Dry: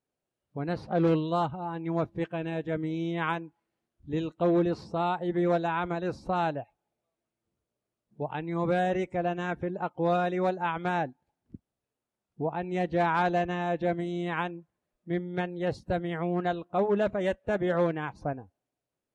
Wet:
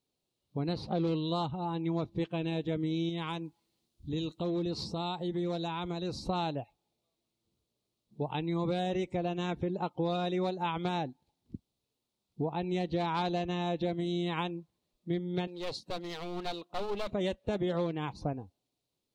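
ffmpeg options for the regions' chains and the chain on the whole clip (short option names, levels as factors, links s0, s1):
-filter_complex "[0:a]asettb=1/sr,asplit=3[s0][s1][s2];[s0]atrim=end=3.094[s3];[s1]atrim=start=3.09:end=6.29,asetpts=PTS-STARTPTS,afade=t=in:d=0.004:c=qsin,afade=t=out:st=3.196:d=0.004:c=qsin,bass=f=250:g=2,treble=f=4000:g=6,acompressor=threshold=0.0141:ratio=2:attack=3.2:release=140:knee=1:detection=peak[s4];[s2]atrim=start=6.286[s5];[s3][s4]acrossfade=d=0.004:c1=hsin:c2=qsin[s6];[s6][s5]acrossfade=d=0.004:c1=qsin:c2=hsin,asettb=1/sr,asplit=3[s7][s8][s9];[s7]atrim=end=15.474[s10];[s8]atrim=start=15.47:end=17.12,asetpts=PTS-STARTPTS,afade=t=in:d=0.004:c=qsin,afade=t=out:st=1.646:d=0.004:c=qsin,highpass=f=660:p=1,aeval=exprs='clip(val(0),-1,0.0112)':c=same[s11];[s9]atrim=start=17.116[s12];[s10][s11]acrossfade=d=0.004:c1=hsin:c2=qsin[s13];[s13][s12]acrossfade=d=0.004:c1=qsin:c2=hsin,equalizer=f=630:t=o:w=0.67:g=-5,equalizer=f=1600:t=o:w=0.67:g=-12,equalizer=f=4000:t=o:w=0.67:g=10,acompressor=threshold=0.0282:ratio=6,volume=1.41"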